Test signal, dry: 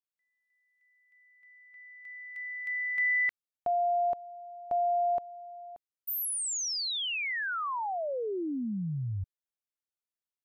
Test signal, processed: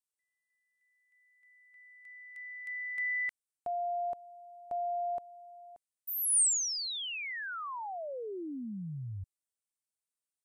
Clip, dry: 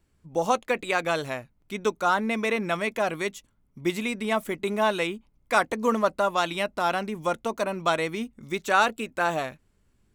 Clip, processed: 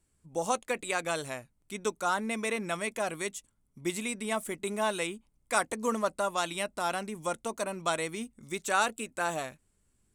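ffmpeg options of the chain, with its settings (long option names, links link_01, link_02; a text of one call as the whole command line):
ffmpeg -i in.wav -af "equalizer=frequency=8800:width_type=o:width=0.82:gain=15,volume=-6.5dB" out.wav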